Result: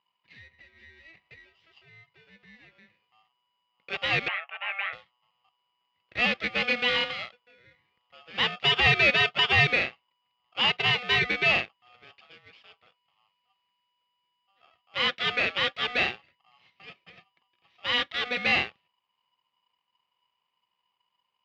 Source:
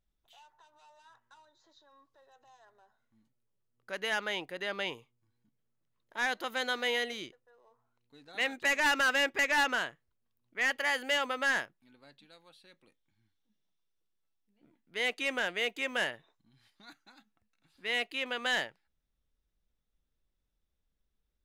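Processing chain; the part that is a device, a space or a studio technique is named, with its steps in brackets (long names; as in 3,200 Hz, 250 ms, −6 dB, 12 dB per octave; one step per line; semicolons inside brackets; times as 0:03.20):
ring modulator pedal into a guitar cabinet (ring modulator with a square carrier 980 Hz; loudspeaker in its box 100–3,500 Hz, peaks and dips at 290 Hz −10 dB, 420 Hz −5 dB, 640 Hz −7 dB, 950 Hz −10 dB, 1,500 Hz −9 dB, 2,100 Hz +5 dB)
0:04.28–0:04.93: elliptic band-pass filter 690–2,600 Hz, stop band 60 dB
level +9 dB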